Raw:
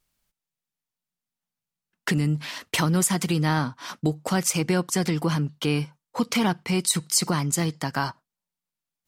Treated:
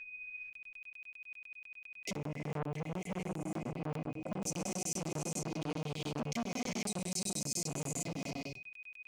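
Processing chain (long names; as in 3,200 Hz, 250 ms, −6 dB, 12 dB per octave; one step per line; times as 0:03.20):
adaptive Wiener filter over 25 samples
downward compressor 6 to 1, threshold −30 dBFS, peak gain reduction 12.5 dB
brick-wall band-stop 770–2,000 Hz
steady tone 2,500 Hz −47 dBFS
graphic EQ with 15 bands 250 Hz +5 dB, 1,600 Hz +9 dB, 6,300 Hz +10 dB
reverb whose tail is shaped and stops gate 500 ms rising, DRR −1.5 dB
brickwall limiter −23.5 dBFS, peak gain reduction 12.5 dB
flanger 0.77 Hz, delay 7.1 ms, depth 3.9 ms, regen +61%
0:02.16–0:04.42: high shelf with overshoot 2,600 Hz −13.5 dB, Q 1.5
flanger 0.26 Hz, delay 8.3 ms, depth 7.2 ms, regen +80%
regular buffer underruns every 0.10 s, samples 1,024, zero, from 0:00.53
saturating transformer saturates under 770 Hz
level +7 dB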